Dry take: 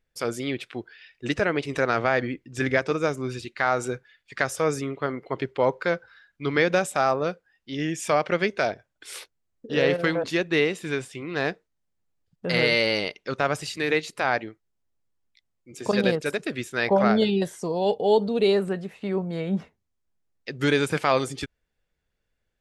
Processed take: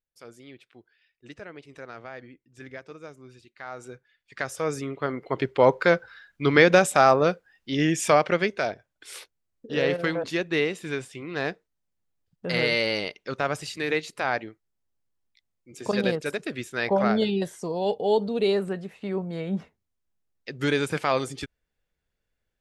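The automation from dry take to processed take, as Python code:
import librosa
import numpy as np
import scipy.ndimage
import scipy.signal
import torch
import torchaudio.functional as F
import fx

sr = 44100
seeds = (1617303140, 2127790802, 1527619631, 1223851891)

y = fx.gain(x, sr, db=fx.line((3.49, -18.0), (4.39, -6.0), (5.75, 5.0), (8.0, 5.0), (8.6, -2.5)))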